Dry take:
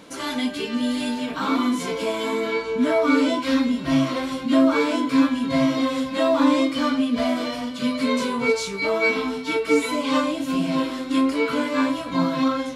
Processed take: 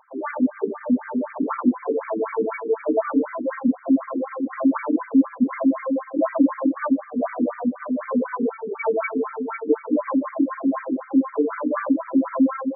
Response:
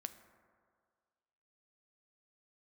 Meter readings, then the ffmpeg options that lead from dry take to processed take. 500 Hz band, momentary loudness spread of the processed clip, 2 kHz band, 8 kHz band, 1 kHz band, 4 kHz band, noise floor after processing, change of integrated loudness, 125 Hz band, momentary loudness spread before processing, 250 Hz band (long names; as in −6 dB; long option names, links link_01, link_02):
−1.5 dB, 7 LU, −8.0 dB, below −40 dB, −3.0 dB, below −40 dB, −42 dBFS, −1.5 dB, below −10 dB, 7 LU, 0.0 dB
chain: -filter_complex "[0:a]acompressor=threshold=-23dB:ratio=6,equalizer=frequency=250:width_type=o:width=1:gain=4,equalizer=frequency=4000:width_type=o:width=1:gain=6,equalizer=frequency=8000:width_type=o:width=1:gain=10,adynamicsmooth=sensitivity=1:basefreq=510,asplit=2[link_01][link_02];[1:a]atrim=start_sample=2205,atrim=end_sample=4410[link_03];[link_02][link_03]afir=irnorm=-1:irlink=0,volume=9dB[link_04];[link_01][link_04]amix=inputs=2:normalize=0,afftfilt=real='re*between(b*sr/1024,300*pow(1700/300,0.5+0.5*sin(2*PI*4*pts/sr))/1.41,300*pow(1700/300,0.5+0.5*sin(2*PI*4*pts/sr))*1.41)':imag='im*between(b*sr/1024,300*pow(1700/300,0.5+0.5*sin(2*PI*4*pts/sr))/1.41,300*pow(1700/300,0.5+0.5*sin(2*PI*4*pts/sr))*1.41)':win_size=1024:overlap=0.75"